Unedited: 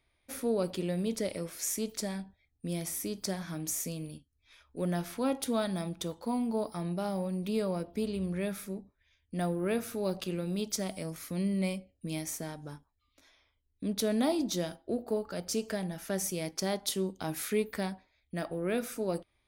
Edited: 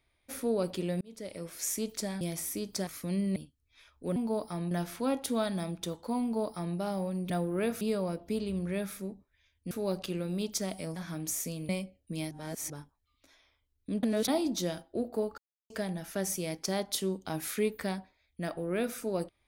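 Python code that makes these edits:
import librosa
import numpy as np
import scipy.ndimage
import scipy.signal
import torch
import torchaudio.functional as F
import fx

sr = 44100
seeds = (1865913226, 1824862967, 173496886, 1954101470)

y = fx.edit(x, sr, fx.fade_in_span(start_s=1.01, length_s=0.61),
    fx.cut(start_s=2.21, length_s=0.49),
    fx.swap(start_s=3.36, length_s=0.73, other_s=11.14, other_length_s=0.49),
    fx.duplicate(start_s=6.4, length_s=0.55, to_s=4.89),
    fx.move(start_s=9.38, length_s=0.51, to_s=7.48),
    fx.reverse_span(start_s=12.25, length_s=0.39),
    fx.reverse_span(start_s=13.97, length_s=0.25),
    fx.silence(start_s=15.32, length_s=0.32), tone=tone)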